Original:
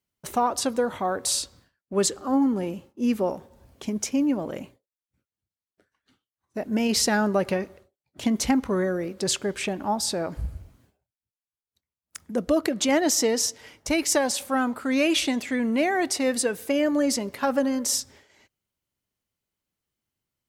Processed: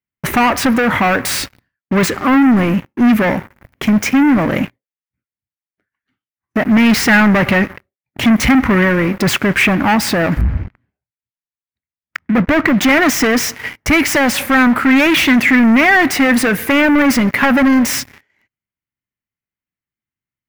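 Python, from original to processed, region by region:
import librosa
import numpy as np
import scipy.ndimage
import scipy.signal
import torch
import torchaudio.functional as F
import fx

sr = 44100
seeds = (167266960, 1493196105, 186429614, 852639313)

y = fx.chain(x, sr, fx.air_absorb(metres=130.0),
    fx.resample_linear(factor=2), at=(10.41, 12.77))
y = fx.dynamic_eq(y, sr, hz=380.0, q=3.6, threshold_db=-39.0, ratio=4.0, max_db=-5)
y = fx.leveller(y, sr, passes=5)
y = fx.graphic_eq(y, sr, hz=(125, 250, 500, 2000, 4000, 8000), db=(4, 3, -5, 10, -6, -10))
y = F.gain(torch.from_numpy(y), 1.5).numpy()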